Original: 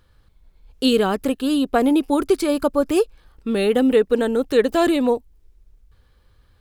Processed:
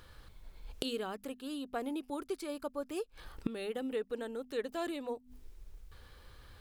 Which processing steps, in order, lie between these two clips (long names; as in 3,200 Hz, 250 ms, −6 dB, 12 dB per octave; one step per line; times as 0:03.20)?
low-shelf EQ 400 Hz −5.5 dB
mains-hum notches 50/100/150/200/250 Hz
gate with flip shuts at −27 dBFS, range −24 dB
level +6.5 dB